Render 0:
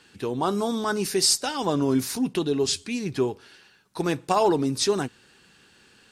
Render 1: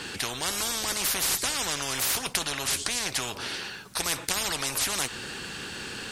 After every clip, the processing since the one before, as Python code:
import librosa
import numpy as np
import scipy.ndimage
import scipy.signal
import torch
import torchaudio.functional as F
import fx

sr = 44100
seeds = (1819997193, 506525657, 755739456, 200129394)

y = fx.spectral_comp(x, sr, ratio=10.0)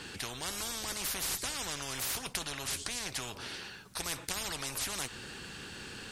y = fx.low_shelf(x, sr, hz=160.0, db=6.0)
y = y * librosa.db_to_amplitude(-8.5)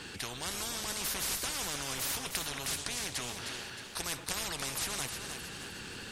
y = fx.echo_feedback(x, sr, ms=311, feedback_pct=47, wet_db=-7.0)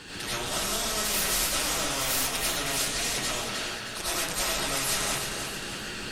y = fx.rev_freeverb(x, sr, rt60_s=0.55, hf_ratio=0.5, predelay_ms=55, drr_db=-8.5)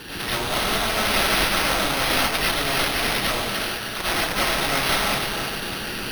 y = np.repeat(x[::6], 6)[:len(x)]
y = y * librosa.db_to_amplitude(6.5)